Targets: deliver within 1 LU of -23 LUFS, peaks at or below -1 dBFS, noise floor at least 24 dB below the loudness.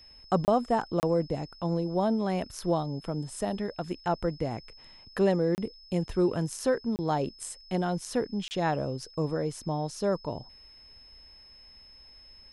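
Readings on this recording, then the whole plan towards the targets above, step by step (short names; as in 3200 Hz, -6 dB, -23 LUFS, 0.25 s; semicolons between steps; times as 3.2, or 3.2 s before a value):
dropouts 5; longest dropout 29 ms; steady tone 5200 Hz; tone level -51 dBFS; loudness -30.0 LUFS; peak -11.5 dBFS; loudness target -23.0 LUFS
-> interpolate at 0.45/1/5.55/6.96/8.48, 29 ms; notch 5200 Hz, Q 30; gain +7 dB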